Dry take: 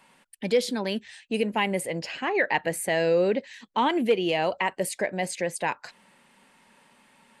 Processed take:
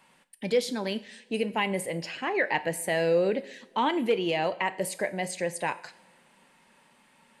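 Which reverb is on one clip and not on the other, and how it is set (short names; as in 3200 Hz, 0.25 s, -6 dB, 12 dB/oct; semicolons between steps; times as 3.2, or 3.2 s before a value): two-slope reverb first 0.55 s, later 3.1 s, from -22 dB, DRR 12 dB; gain -2.5 dB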